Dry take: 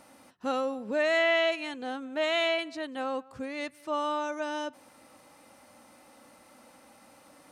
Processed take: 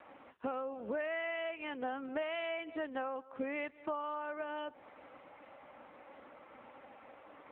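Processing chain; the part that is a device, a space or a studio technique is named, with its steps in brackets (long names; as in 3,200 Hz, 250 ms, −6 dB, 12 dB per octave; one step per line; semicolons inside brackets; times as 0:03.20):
0:00.93–0:01.92: high-pass filter 58 Hz 24 dB per octave
voicemail (band-pass filter 310–2,600 Hz; downward compressor 12 to 1, threshold −39 dBFS, peak gain reduction 17.5 dB; level +5.5 dB; AMR narrowband 5.9 kbit/s 8,000 Hz)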